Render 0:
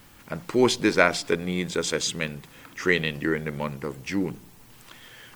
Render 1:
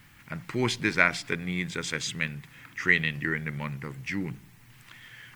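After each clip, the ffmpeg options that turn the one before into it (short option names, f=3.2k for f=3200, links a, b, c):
-af "equalizer=f=125:t=o:w=1:g=10,equalizer=f=500:t=o:w=1:g=-6,equalizer=f=2k:t=o:w=1:g=10,volume=-7dB"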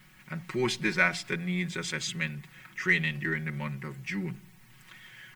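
-filter_complex "[0:a]aecho=1:1:5.4:0.94,asplit=2[a][b];[b]asoftclip=type=tanh:threshold=-22dB,volume=-11.5dB[c];[a][c]amix=inputs=2:normalize=0,volume=-6dB"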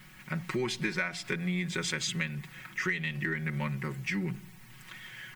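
-af "acompressor=threshold=-32dB:ratio=10,volume=4dB"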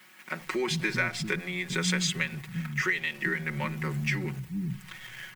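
-filter_complex "[0:a]asplit=2[a][b];[b]aeval=exprs='val(0)*gte(abs(val(0)),0.00794)':c=same,volume=-5dB[c];[a][c]amix=inputs=2:normalize=0,acrossover=split=240[d][e];[d]adelay=400[f];[f][e]amix=inputs=2:normalize=0"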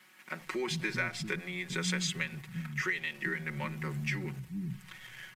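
-af "aresample=32000,aresample=44100,volume=-5dB"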